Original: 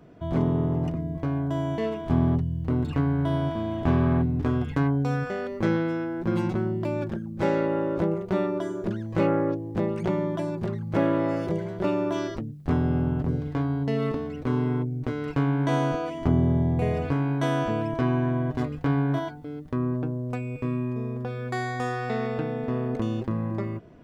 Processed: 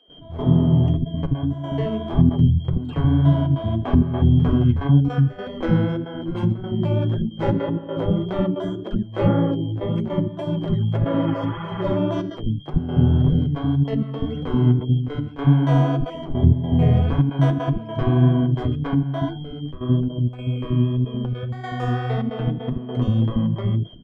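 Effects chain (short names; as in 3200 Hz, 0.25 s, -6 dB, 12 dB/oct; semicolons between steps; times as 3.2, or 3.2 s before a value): whine 3200 Hz -41 dBFS; tilt -3 dB/oct; step gate ".x..xxxxxx.xx" 156 bpm -12 dB; spectral repair 11.23–11.94, 730–3500 Hz before; flange 1.8 Hz, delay 3.5 ms, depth 7.5 ms, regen +28%; bands offset in time highs, lows 80 ms, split 360 Hz; gain +5 dB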